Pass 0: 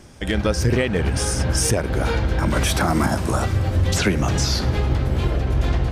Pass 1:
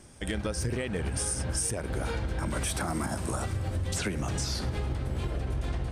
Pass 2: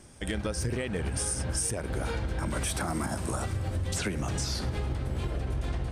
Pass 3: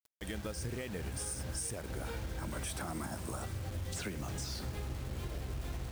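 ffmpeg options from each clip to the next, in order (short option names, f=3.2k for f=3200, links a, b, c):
-af "equalizer=f=8.8k:t=o:w=0.34:g=11.5,acompressor=threshold=-19dB:ratio=6,volume=-8dB"
-af anull
-af "acrusher=bits=6:mix=0:aa=0.000001,volume=-8.5dB"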